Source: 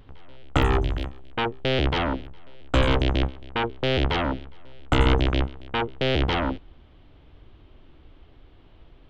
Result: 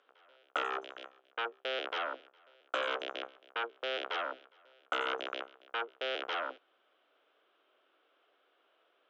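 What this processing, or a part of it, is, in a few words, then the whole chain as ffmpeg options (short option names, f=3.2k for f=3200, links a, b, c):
phone speaker on a table: -af "highpass=f=490:w=0.5412,highpass=f=490:w=1.3066,equalizer=f=890:t=q:w=4:g=-7,equalizer=f=1.4k:t=q:w=4:g=7,equalizer=f=2k:t=q:w=4:g=-4,equalizer=f=4.4k:t=q:w=4:g=-8,lowpass=f=6.4k:w=0.5412,lowpass=f=6.4k:w=1.3066,volume=-8.5dB"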